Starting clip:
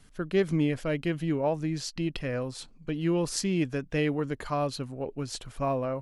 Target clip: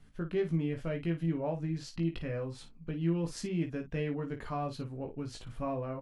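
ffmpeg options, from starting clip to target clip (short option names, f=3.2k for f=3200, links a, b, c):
-filter_complex "[0:a]bass=f=250:g=6,treble=f=4k:g=-8,acompressor=threshold=-30dB:ratio=1.5,asplit=2[a][b];[b]aecho=0:1:18|54:0.631|0.299[c];[a][c]amix=inputs=2:normalize=0,volume=-6.5dB"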